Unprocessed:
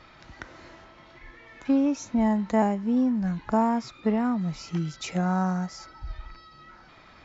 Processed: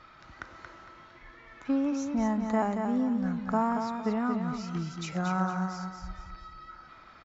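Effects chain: peaking EQ 1.3 kHz +8.5 dB 0.52 oct; on a send: feedback delay 229 ms, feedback 35%, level -6 dB; on the sum: trim -5.5 dB

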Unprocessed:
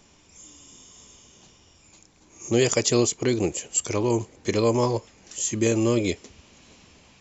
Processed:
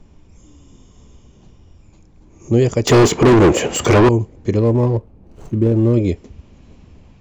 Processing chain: 4.59–5.94 s: median filter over 25 samples; tilt EQ -4 dB/octave; 2.87–4.09 s: overdrive pedal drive 35 dB, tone 2.2 kHz, clips at -2.5 dBFS

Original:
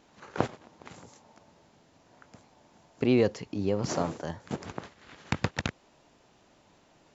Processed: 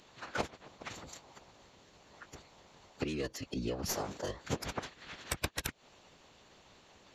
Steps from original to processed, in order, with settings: tracing distortion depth 0.13 ms; treble shelf 2.2 kHz +9 dB; compression 12:1, threshold -32 dBFS, peak gain reduction 15 dB; formant-preserving pitch shift -8.5 st; harmonic-percussive split harmonic -11 dB; trim +4.5 dB

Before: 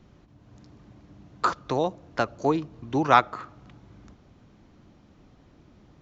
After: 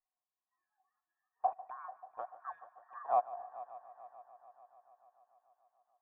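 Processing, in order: every band turned upside down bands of 2 kHz; spectral noise reduction 21 dB; cascade formant filter a; wow and flutter 29 cents; dynamic bell 1.1 kHz, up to -7 dB, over -44 dBFS, Q 2.3; multi-head delay 146 ms, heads first and third, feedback 66%, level -18 dB; trim -2 dB

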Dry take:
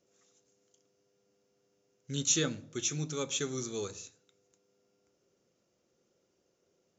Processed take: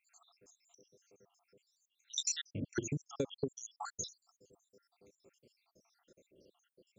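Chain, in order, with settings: random holes in the spectrogram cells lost 84%; 2.61–3.99 s: tilt shelf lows +7 dB, about 1.2 kHz; compression 12:1, threshold -45 dBFS, peak gain reduction 20 dB; trim +12 dB

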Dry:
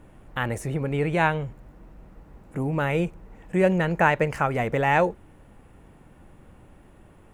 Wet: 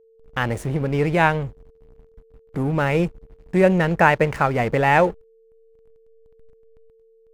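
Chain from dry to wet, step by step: hysteresis with a dead band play -35 dBFS; whistle 450 Hz -57 dBFS; trim +4.5 dB

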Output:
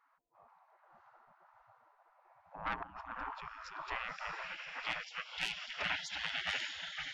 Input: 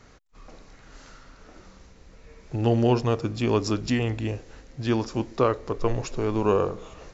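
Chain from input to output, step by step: mains buzz 100 Hz, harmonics 10, -60 dBFS 0 dB/octave; 2.83–3.81 s: compressor with a negative ratio -29 dBFS, ratio -1; on a send: echo that smears into a reverb 560 ms, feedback 43%, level -5 dB; on the sum: low-pass sweep 370 Hz -> 2.7 kHz, 2.21–6.09 s; in parallel at -3.5 dB: saturation -20 dBFS, distortion -10 dB; on the sum: spectral gate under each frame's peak -30 dB weak; trim +4.5 dB

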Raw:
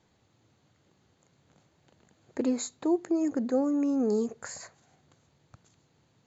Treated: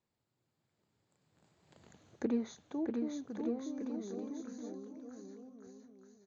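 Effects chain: Doppler pass-by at 1.90 s, 30 m/s, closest 5 m; bouncing-ball echo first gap 640 ms, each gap 0.8×, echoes 5; low-pass that closes with the level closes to 2.8 kHz, closed at -35 dBFS; trim +3 dB

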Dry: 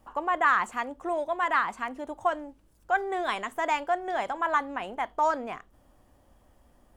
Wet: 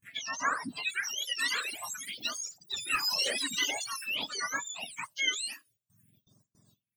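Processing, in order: spectrum inverted on a logarithmic axis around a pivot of 1.4 kHz; gate with hold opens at -54 dBFS; treble shelf 3.9 kHz +9.5 dB; 2.93–3.71 s: waveshaping leveller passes 1; ever faster or slower copies 657 ms, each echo +6 st, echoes 3, each echo -6 dB; phase shifter stages 4, 0.5 Hz, lowest notch 130–3000 Hz; reverb removal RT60 1.4 s; 4.22–4.84 s: three bands compressed up and down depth 40%

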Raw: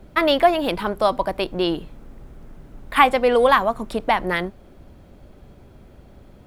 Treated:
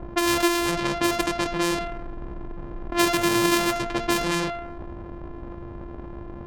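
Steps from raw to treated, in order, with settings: sorted samples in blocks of 128 samples; bass shelf 360 Hz -4 dB; de-hum 229.9 Hz, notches 30; level-controlled noise filter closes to 870 Hz, open at -18 dBFS; level flattener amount 50%; trim -5.5 dB

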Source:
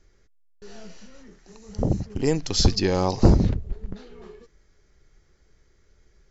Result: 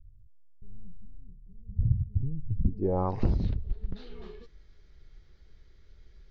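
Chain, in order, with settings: bass shelf 130 Hz +11 dB; compression 2.5:1, threshold -24 dBFS, peak gain reduction 15 dB; low-pass sweep 110 Hz -> 3.9 kHz, 2.50–3.33 s; trim -4 dB

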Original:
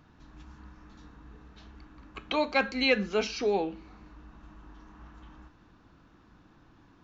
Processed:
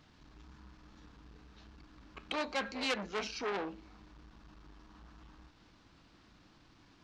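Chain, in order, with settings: band noise 440–5100 Hz -65 dBFS; transformer saturation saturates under 2.9 kHz; trim -4.5 dB

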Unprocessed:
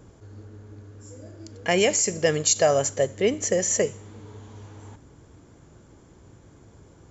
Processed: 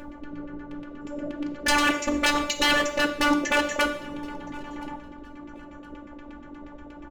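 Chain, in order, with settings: in parallel at +2.5 dB: compression, threshold -30 dBFS, peak gain reduction 14.5 dB; on the sum: LFO low-pass saw down 8.4 Hz 340–2800 Hz; wavefolder -18.5 dBFS; robot voice 292 Hz; on a send: feedback delay 1019 ms, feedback 23%, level -24 dB; on the sum: two-slope reverb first 0.61 s, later 2.3 s, DRR 6.5 dB; trim +5.5 dB

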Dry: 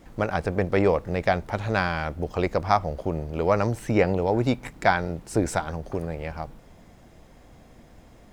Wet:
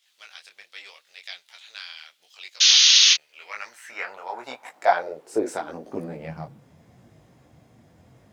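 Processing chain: painted sound noise, 2.60–3.14 s, 1–6.7 kHz -13 dBFS; high-pass sweep 3.4 kHz -> 110 Hz, 3.02–6.78 s; detune thickener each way 29 cents; trim -1 dB

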